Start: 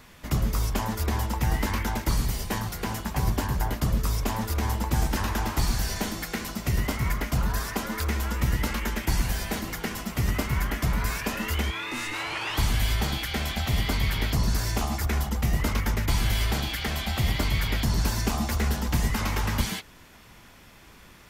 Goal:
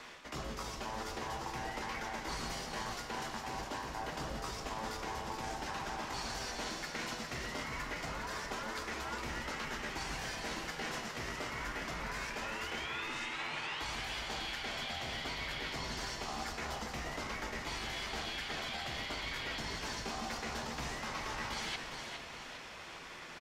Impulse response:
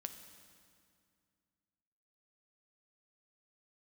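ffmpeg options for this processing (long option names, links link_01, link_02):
-filter_complex "[0:a]acrossover=split=310 7500:gain=0.141 1 0.0891[link_01][link_02][link_03];[link_01][link_02][link_03]amix=inputs=3:normalize=0,areverse,acompressor=threshold=-42dB:ratio=10,areverse,atempo=0.91,asplit=7[link_04][link_05][link_06][link_07][link_08][link_09][link_10];[link_05]adelay=409,afreqshift=-90,volume=-6.5dB[link_11];[link_06]adelay=818,afreqshift=-180,volume=-13.1dB[link_12];[link_07]adelay=1227,afreqshift=-270,volume=-19.6dB[link_13];[link_08]adelay=1636,afreqshift=-360,volume=-26.2dB[link_14];[link_09]adelay=2045,afreqshift=-450,volume=-32.7dB[link_15];[link_10]adelay=2454,afreqshift=-540,volume=-39.3dB[link_16];[link_04][link_11][link_12][link_13][link_14][link_15][link_16]amix=inputs=7:normalize=0[link_17];[1:a]atrim=start_sample=2205,afade=type=out:start_time=0.34:duration=0.01,atrim=end_sample=15435,asetrate=37044,aresample=44100[link_18];[link_17][link_18]afir=irnorm=-1:irlink=0,volume=6.5dB"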